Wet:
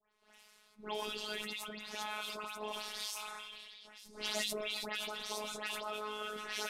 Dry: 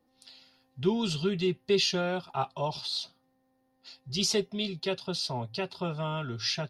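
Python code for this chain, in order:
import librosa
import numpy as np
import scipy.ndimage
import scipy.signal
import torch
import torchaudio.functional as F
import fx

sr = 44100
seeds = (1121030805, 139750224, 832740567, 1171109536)

y = fx.cvsd(x, sr, bps=64000)
y = fx.spec_gate(y, sr, threshold_db=-10, keep='weak')
y = fx.bass_treble(y, sr, bass_db=-5, treble_db=-6)
y = fx.hum_notches(y, sr, base_hz=50, count=4)
y = fx.over_compress(y, sr, threshold_db=-41.0, ratio=-0.5, at=(0.95, 3.99))
y = fx.dispersion(y, sr, late='highs', ms=127.0, hz=2600.0)
y = fx.robotise(y, sr, hz=212.0)
y = fx.echo_stepped(y, sr, ms=378, hz=1100.0, octaves=1.4, feedback_pct=70, wet_db=-12.0)
y = fx.sustainer(y, sr, db_per_s=20.0)
y = y * 10.0 ** (1.5 / 20.0)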